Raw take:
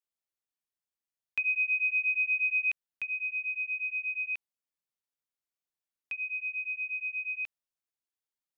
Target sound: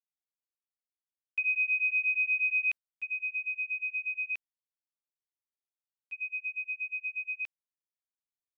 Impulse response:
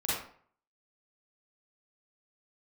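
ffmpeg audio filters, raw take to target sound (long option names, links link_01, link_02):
-af "agate=range=-17dB:threshold=-35dB:ratio=16:detection=peak"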